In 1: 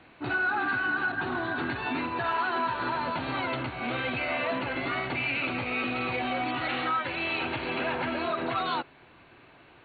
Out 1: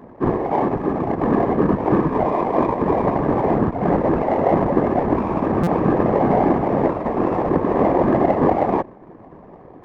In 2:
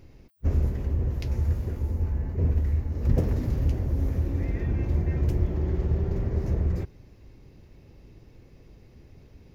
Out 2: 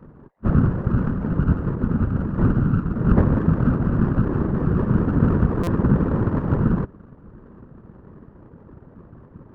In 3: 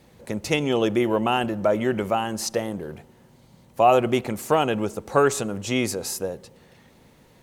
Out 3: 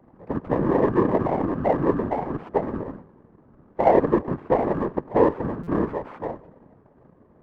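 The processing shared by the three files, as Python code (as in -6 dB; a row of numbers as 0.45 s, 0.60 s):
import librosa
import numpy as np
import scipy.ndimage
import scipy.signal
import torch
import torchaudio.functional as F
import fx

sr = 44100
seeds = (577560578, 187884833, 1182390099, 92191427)

y = fx.bit_reversed(x, sr, seeds[0], block=32)
y = scipy.signal.sosfilt(scipy.signal.butter(4, 1300.0, 'lowpass', fs=sr, output='sos'), y)
y = y * np.sin(2.0 * np.pi * 45.0 * np.arange(len(y)) / sr)
y = scipy.signal.sosfilt(scipy.signal.butter(2, 45.0, 'highpass', fs=sr, output='sos'), y)
y = fx.whisperise(y, sr, seeds[1])
y = fx.low_shelf(y, sr, hz=130.0, db=-5.0)
y = fx.buffer_glitch(y, sr, at_s=(5.63,), block=256, repeats=6)
y = fx.running_max(y, sr, window=3)
y = librosa.util.normalize(y) * 10.0 ** (-3 / 20.0)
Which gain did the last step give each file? +21.5 dB, +13.5 dB, +6.5 dB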